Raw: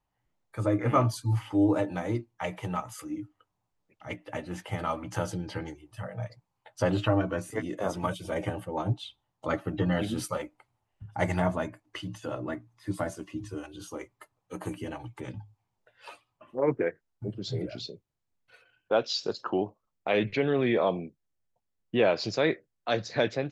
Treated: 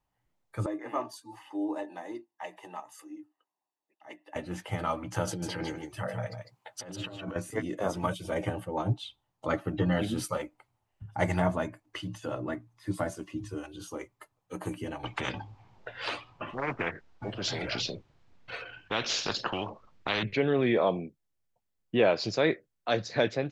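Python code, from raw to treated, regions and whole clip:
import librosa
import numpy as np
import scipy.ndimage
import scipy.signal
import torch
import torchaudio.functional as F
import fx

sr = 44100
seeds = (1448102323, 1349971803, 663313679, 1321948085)

y = fx.chain(x, sr, fx.ladder_highpass(hz=320.0, resonance_pct=50),
    fx.comb(ms=1.1, depth=0.66), at=(0.66, 4.36))
y = fx.chain(y, sr, fx.highpass(hz=170.0, slope=6),
    fx.over_compress(threshold_db=-38.0, ratio=-1.0),
    fx.echo_single(ms=151, db=-6.5), at=(5.27, 7.36))
y = fx.chain(y, sr, fx.air_absorb(metres=160.0),
    fx.spectral_comp(ratio=4.0), at=(15.03, 20.23))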